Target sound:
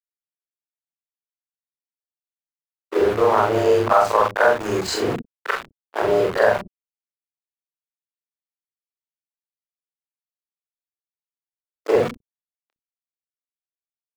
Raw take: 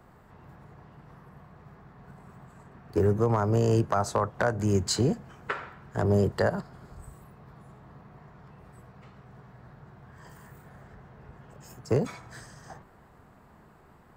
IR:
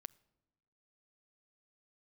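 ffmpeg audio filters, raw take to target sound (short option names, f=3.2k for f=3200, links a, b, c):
-filter_complex "[0:a]afftfilt=real='re':imag='-im':win_size=4096:overlap=0.75,equalizer=f=62:w=0.73:g=2.5,asplit=2[a][b];[b]adelay=38,volume=-12dB[c];[a][c]amix=inputs=2:normalize=0,aeval=exprs='val(0)+0.002*(sin(2*PI*60*n/s)+sin(2*PI*2*60*n/s)/2+sin(2*PI*3*60*n/s)/3+sin(2*PI*4*60*n/s)/4+sin(2*PI*5*60*n/s)/5)':c=same,acrossover=split=280[d][e];[e]dynaudnorm=f=320:g=7:m=15dB[f];[d][f]amix=inputs=2:normalize=0,aeval=exprs='val(0)*gte(abs(val(0)),0.0631)':c=same,bass=f=250:g=-6,treble=f=4k:g=-12,agate=range=-33dB:threshold=-28dB:ratio=3:detection=peak,acrossover=split=280[g][h];[g]adelay=60[i];[i][h]amix=inputs=2:normalize=0,volume=2dB"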